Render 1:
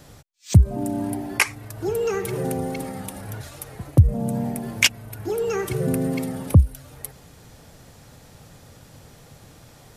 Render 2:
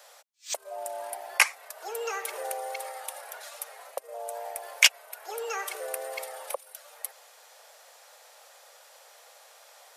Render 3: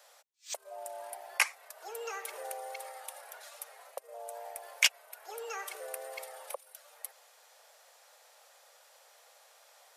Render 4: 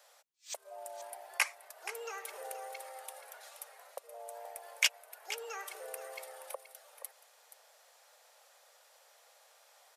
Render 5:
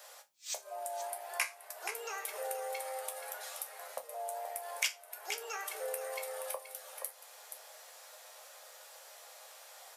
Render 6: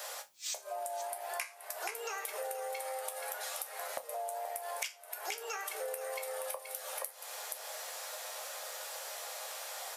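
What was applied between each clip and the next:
steep high-pass 530 Hz 48 dB/oct; gain -1 dB
bell 220 Hz -7.5 dB 0.71 oct; gain -6.5 dB
echo 0.476 s -12.5 dB; gain -3 dB
high shelf 7900 Hz +4.5 dB; compressor 2:1, threshold -49 dBFS, peak gain reduction 15 dB; resonator bank C#2 major, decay 0.22 s; gain +17.5 dB
compressor 6:1, threshold -48 dBFS, peak gain reduction 19.5 dB; gain +11 dB

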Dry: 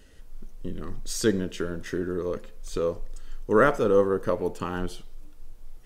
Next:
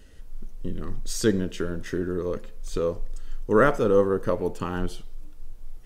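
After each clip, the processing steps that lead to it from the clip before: low shelf 190 Hz +4.5 dB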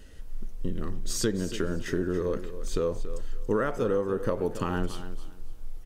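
compressor 12:1, threshold -24 dBFS, peak gain reduction 12 dB; feedback echo 0.281 s, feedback 22%, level -13 dB; gain +1.5 dB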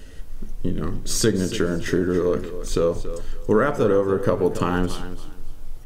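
shoebox room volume 200 m³, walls furnished, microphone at 0.35 m; gain +7.5 dB

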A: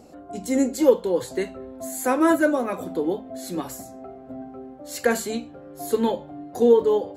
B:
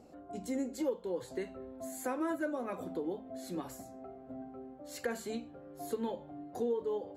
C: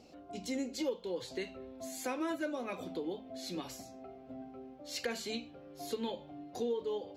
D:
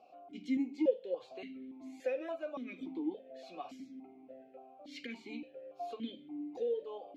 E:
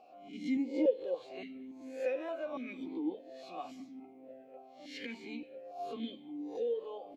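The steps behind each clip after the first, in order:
high shelf 4200 Hz -6 dB; compressor 2.5:1, threshold -26 dBFS, peak gain reduction 11 dB; gain -8.5 dB
band shelf 3700 Hz +11.5 dB; gain -1.5 dB
vowel sequencer 3.5 Hz; gain +7.5 dB
spectral swells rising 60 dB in 0.44 s; speakerphone echo 0.2 s, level -23 dB

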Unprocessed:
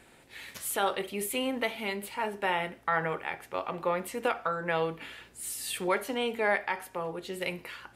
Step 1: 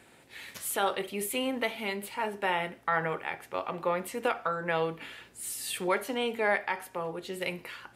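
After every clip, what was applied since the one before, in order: HPF 70 Hz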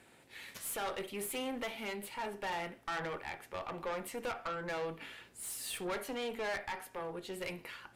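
tube stage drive 30 dB, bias 0.4; gain -3 dB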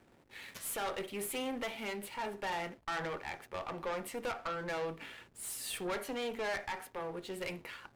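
backlash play -54 dBFS; gain +1 dB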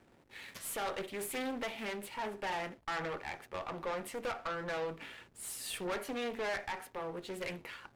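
Doppler distortion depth 0.31 ms

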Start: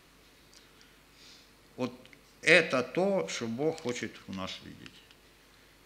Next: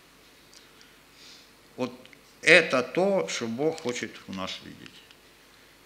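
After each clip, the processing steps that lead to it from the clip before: low shelf 120 Hz -8 dB; ending taper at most 270 dB/s; gain +5 dB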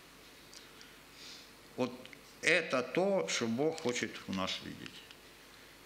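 compressor 2.5:1, threshold -29 dBFS, peak gain reduction 12.5 dB; gain -1 dB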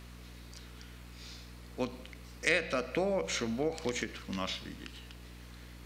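hum 60 Hz, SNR 13 dB

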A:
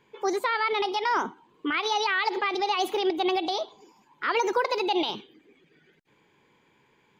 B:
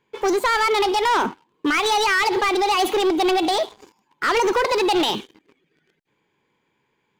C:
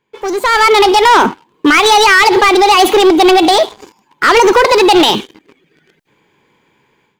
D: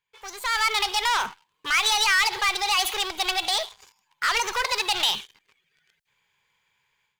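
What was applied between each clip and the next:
sample leveller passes 3
AGC gain up to 14 dB
passive tone stack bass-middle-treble 10-0-10; gain -7.5 dB

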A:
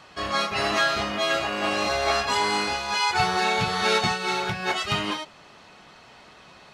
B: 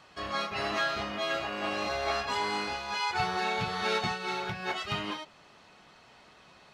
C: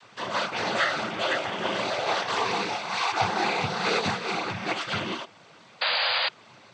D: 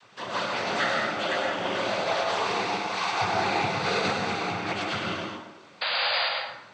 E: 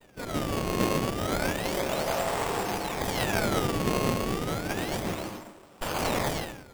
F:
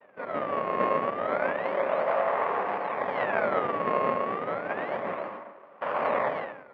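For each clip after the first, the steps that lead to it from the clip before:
dynamic EQ 9000 Hz, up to -7 dB, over -46 dBFS, Q 0.8; gain -7 dB
noise vocoder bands 16; painted sound noise, 5.81–6.29, 480–4900 Hz -30 dBFS; gain +5 dB
plate-style reverb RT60 1 s, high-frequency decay 0.55×, pre-delay 85 ms, DRR 0 dB; gain -3 dB
decimation with a swept rate 23×, swing 160% 0.31 Hz; running maximum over 17 samples
speaker cabinet 310–2200 Hz, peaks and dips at 330 Hz -7 dB, 580 Hz +7 dB, 1100 Hz +7 dB, 1900 Hz +3 dB

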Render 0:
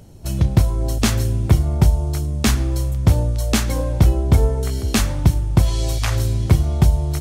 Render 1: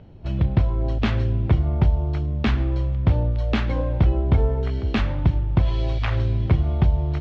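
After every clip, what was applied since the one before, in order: LPF 3300 Hz 24 dB/oct; in parallel at -1 dB: limiter -11.5 dBFS, peak gain reduction 7 dB; on the sum: gain -7.5 dB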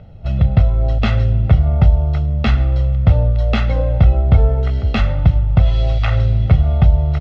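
comb 1.5 ms, depth 69%; gain +3.5 dB

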